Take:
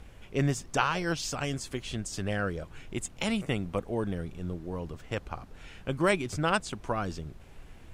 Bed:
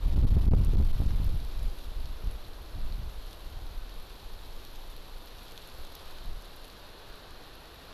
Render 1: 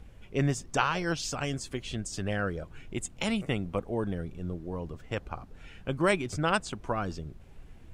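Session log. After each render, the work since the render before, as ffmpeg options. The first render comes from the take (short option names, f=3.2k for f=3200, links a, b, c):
-af "afftdn=nr=6:nf=-51"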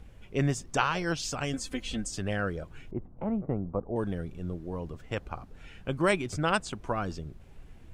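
-filter_complex "[0:a]asettb=1/sr,asplit=3[a][b][c];[a]atrim=end=1.534[d];[b]atrim=start=1.53:end=2.11,asetpts=PTS-STARTPTS,afade=t=in:d=0.004:c=qsin,afade=t=out:st=0.576:d=0.004:c=qsin,aecho=1:1:3.9:0.79,atrim=end_sample=25578[e];[c]atrim=start=2.106[f];[d][e]acrossfade=d=0.004:c1=hsin:c2=qsin[g];[g][f]acrossfade=d=0.004:c1=qsin:c2=hsin,asettb=1/sr,asplit=3[h][i][j];[h]atrim=end=2.914[k];[i]atrim=start=2.91:end=3.96,asetpts=PTS-STARTPTS,afade=t=in:d=0.004:c=qsin,afade=t=out:st=1.046:d=0.004:c=qsin,lowpass=f=1.1k:w=0.5412,lowpass=f=1.1k:w=1.3066[l];[j]atrim=start=3.956[m];[k][l]acrossfade=d=0.004:c1=hsin:c2=qsin[n];[n][m]acrossfade=d=0.004:c1=qsin:c2=hsin"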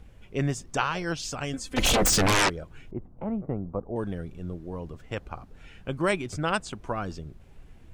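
-filter_complex "[0:a]asplit=3[a][b][c];[a]afade=t=out:st=1.76:d=0.02[d];[b]aeval=exprs='0.126*sin(PI/2*7.08*val(0)/0.126)':c=same,afade=t=in:st=1.76:d=0.02,afade=t=out:st=2.48:d=0.02[e];[c]afade=t=in:st=2.48:d=0.02[f];[d][e][f]amix=inputs=3:normalize=0"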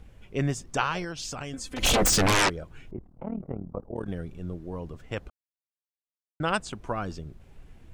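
-filter_complex "[0:a]asettb=1/sr,asplit=3[a][b][c];[a]atrim=end=1.044[d];[b]atrim=start=1.04:end=1.83,asetpts=PTS-STARTPTS,afade=t=in:d=0.004:c=qsin,afade=t=out:st=0.786:d=0.004:c=qsin,acompressor=threshold=-31dB:ratio=6:attack=3.2:release=140:knee=1:detection=peak[e];[c]atrim=start=1.826[f];[d][e]acrossfade=d=0.004:c1=hsin:c2=qsin[g];[g][f]acrossfade=d=0.004:c1=qsin:c2=hsin,asettb=1/sr,asplit=3[h][i][j];[h]atrim=end=2.964[k];[i]atrim=start=2.96:end=4.08,asetpts=PTS-STARTPTS,afade=t=in:d=0.004:c=qsin,afade=t=out:st=1.116:d=0.004:c=qsin,tremolo=f=38:d=0.889[l];[j]atrim=start=4.076[m];[k][l]acrossfade=d=0.004:c1=hsin:c2=qsin[n];[n][m]acrossfade=d=0.004:c1=qsin:c2=hsin,asplit=3[o][p][q];[o]atrim=end=5.3,asetpts=PTS-STARTPTS,afade=t=out:st=5.296:d=0.004:c=hsin[r];[p]atrim=start=5.3:end=6.4,asetpts=PTS-STARTPTS,volume=0[s];[q]atrim=start=6.4,asetpts=PTS-STARTPTS,afade=t=in:d=0.004:c=hsin[t];[r][s][t]concat=n=3:v=0:a=1"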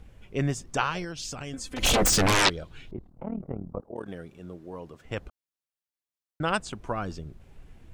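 -filter_complex "[0:a]asettb=1/sr,asplit=3[a][b][c];[a]atrim=end=0.904[d];[b]atrim=start=0.9:end=1.47,asetpts=PTS-STARTPTS,afade=t=in:d=0.004:c=qsin,afade=t=out:st=0.566:d=0.004:c=qsin,equalizer=f=1k:w=0.81:g=-4[e];[c]atrim=start=1.466[f];[d][e]acrossfade=d=0.004:c1=hsin:c2=qsin[g];[g][f]acrossfade=d=0.004:c1=qsin:c2=hsin,asettb=1/sr,asplit=3[h][i][j];[h]atrim=end=2.454[k];[i]atrim=start=2.45:end=3.1,asetpts=PTS-STARTPTS,afade=t=in:d=0.004:c=qsin,afade=t=out:st=0.646:d=0.004:c=qsin,equalizer=f=3.8k:t=o:w=0.87:g=11.5[l];[j]atrim=start=3.096[m];[k][l]acrossfade=d=0.004:c1=hsin:c2=qsin[n];[n][m]acrossfade=d=0.004:c1=qsin:c2=hsin,asettb=1/sr,asplit=3[o][p][q];[o]atrim=end=3.814[r];[p]atrim=start=3.81:end=5.05,asetpts=PTS-STARTPTS,afade=t=in:d=0.004:c=qsin,afade=t=out:st=1.236:d=0.004:c=qsin,highpass=f=340:p=1[s];[q]atrim=start=5.046[t];[r][s]acrossfade=d=0.004:c1=hsin:c2=qsin[u];[u][t]acrossfade=d=0.004:c1=qsin:c2=hsin"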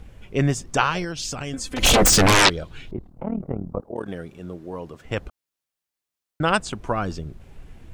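-af "volume=6.5dB,alimiter=limit=-3dB:level=0:latency=1"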